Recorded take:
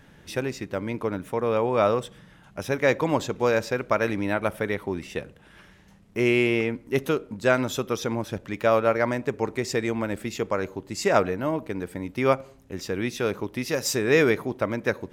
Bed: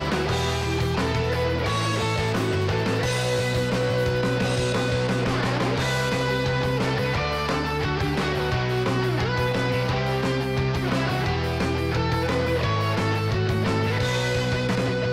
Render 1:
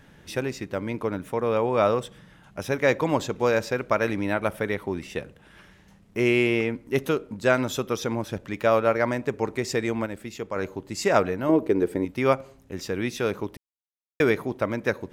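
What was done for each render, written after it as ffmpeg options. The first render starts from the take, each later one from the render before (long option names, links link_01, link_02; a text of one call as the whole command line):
ffmpeg -i in.wav -filter_complex "[0:a]asettb=1/sr,asplit=3[link_01][link_02][link_03];[link_01]atrim=end=11.494[link_04];[link_02]atrim=start=11.49:end=12.05,asetpts=PTS-STARTPTS,afade=type=in:duration=0.004:curve=qsin,afade=type=out:start_time=0.556:duration=0.004:curve=qsin,equalizer=frequency=380:width=1.5:gain=13.5[link_05];[link_03]atrim=start=12.046[link_06];[link_04][link_05]acrossfade=duration=0.004:curve1=hsin:curve2=qsin[link_07];[link_07][link_06]acrossfade=duration=0.004:curve1=qsin:curve2=hsin,asplit=5[link_08][link_09][link_10][link_11][link_12];[link_08]atrim=end=10.062[link_13];[link_09]atrim=start=10.058:end=10.562,asetpts=PTS-STARTPTS,volume=-5.5dB[link_14];[link_10]atrim=start=10.558:end=13.57,asetpts=PTS-STARTPTS,afade=type=out:start_time=3.008:duration=0.004:curve=hsin[link_15];[link_11]atrim=start=13.57:end=14.2,asetpts=PTS-STARTPTS,volume=0[link_16];[link_12]atrim=start=14.2,asetpts=PTS-STARTPTS,afade=type=in:duration=0.004:curve=hsin[link_17];[link_13][link_14]acrossfade=duration=0.004:curve1=hsin:curve2=hsin[link_18];[link_15][link_16][link_17]concat=n=3:v=0:a=1[link_19];[link_18][link_19]acrossfade=duration=0.004:curve1=hsin:curve2=hsin" out.wav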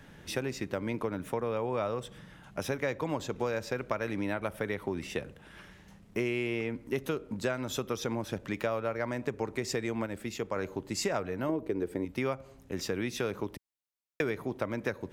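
ffmpeg -i in.wav -filter_complex "[0:a]acrossover=split=110[link_01][link_02];[link_01]alimiter=level_in=21dB:limit=-24dB:level=0:latency=1,volume=-21dB[link_03];[link_02]acompressor=threshold=-29dB:ratio=6[link_04];[link_03][link_04]amix=inputs=2:normalize=0" out.wav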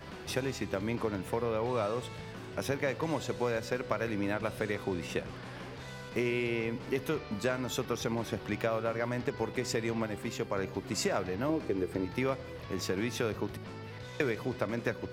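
ffmpeg -i in.wav -i bed.wav -filter_complex "[1:a]volume=-21dB[link_01];[0:a][link_01]amix=inputs=2:normalize=0" out.wav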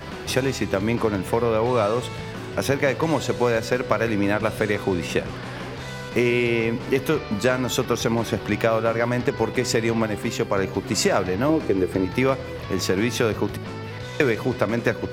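ffmpeg -i in.wav -af "volume=11dB" out.wav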